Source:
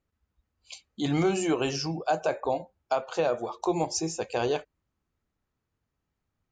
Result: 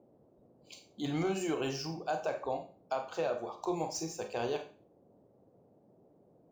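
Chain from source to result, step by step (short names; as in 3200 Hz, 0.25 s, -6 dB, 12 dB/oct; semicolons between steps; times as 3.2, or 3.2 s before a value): median filter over 3 samples; Schroeder reverb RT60 0.36 s, combs from 30 ms, DRR 6 dB; band noise 100–620 Hz -56 dBFS; gain -8 dB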